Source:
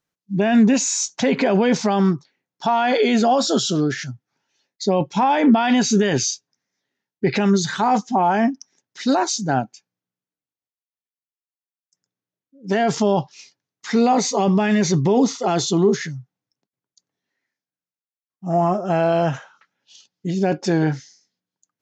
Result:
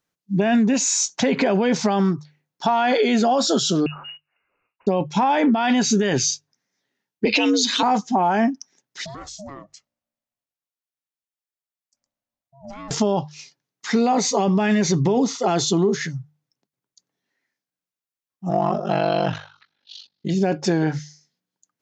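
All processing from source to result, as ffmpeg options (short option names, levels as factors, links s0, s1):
-filter_complex "[0:a]asettb=1/sr,asplit=3[s0][s1][s2];[s0]atrim=end=3.864[s3];[s1]atrim=start=3.86:end=4.87,asetpts=PTS-STARTPTS,afade=t=in:d=0.004:c=qsin,afade=t=out:st=1.006:d=0.004:c=qsin,acompressor=threshold=0.0141:ratio=4:attack=3.2:release=140:knee=1:detection=peak,acrusher=bits=3:mode=log:mix=0:aa=0.000001,lowpass=f=2600:t=q:w=0.5098,lowpass=f=2600:t=q:w=0.6013,lowpass=f=2600:t=q:w=0.9,lowpass=f=2600:t=q:w=2.563,afreqshift=-3000[s4];[s2]atrim=start=4.866[s5];[s3][s4]acrossfade=d=0.004:c1=hsin:c2=qsin[s6];[s6][s5]acrossfade=d=0.004:c1=qsin:c2=hsin,asettb=1/sr,asplit=3[s7][s8][s9];[s7]atrim=end=7.254[s10];[s8]atrim=start=7.25:end=7.83,asetpts=PTS-STARTPTS,afade=t=in:d=0.004:c=qsin,afade=t=out:st=0.576:d=0.004:c=qsin,lowpass=f=6700:w=0.5412,lowpass=f=6700:w=1.3066,highshelf=f=2100:t=q:w=3:g=7,afreqshift=81[s11];[s9]atrim=start=7.826[s12];[s10][s11]acrossfade=d=0.004:c1=hsin:c2=qsin[s13];[s13][s12]acrossfade=d=0.004:c1=qsin:c2=hsin,asettb=1/sr,asplit=3[s14][s15][s16];[s14]atrim=end=9.054[s17];[s15]atrim=start=9.05:end=12.91,asetpts=PTS-STARTPTS,afade=t=in:d=0.004:c=qsin,afade=t=out:st=3.856:d=0.004:c=qsin,acompressor=threshold=0.02:ratio=6:attack=3.2:release=140:knee=1:detection=peak,aeval=exprs='val(0)*sin(2*PI*410*n/s)':c=same[s18];[s16]atrim=start=12.906[s19];[s17][s18]acrossfade=d=0.004:c1=hsin:c2=qsin[s20];[s20][s19]acrossfade=d=0.004:c1=qsin:c2=hsin,asettb=1/sr,asplit=3[s21][s22][s23];[s21]atrim=end=18.494[s24];[s22]atrim=start=18.49:end=20.3,asetpts=PTS-STARTPTS,afade=t=in:d=0.004:c=qsin,afade=t=out:st=1.806:d=0.004:c=qsin,lowpass=f=4100:t=q:w=5,aeval=exprs='val(0)*sin(2*PI*24*n/s)':c=same[s25];[s23]atrim=start=20.296[s26];[s24][s25]acrossfade=d=0.004:c1=hsin:c2=qsin[s27];[s27][s26]acrossfade=d=0.004:c1=qsin:c2=hsin,bandreject=f=50:t=h:w=6,bandreject=f=100:t=h:w=6,bandreject=f=150:t=h:w=6,acompressor=threshold=0.141:ratio=6,volume=1.26"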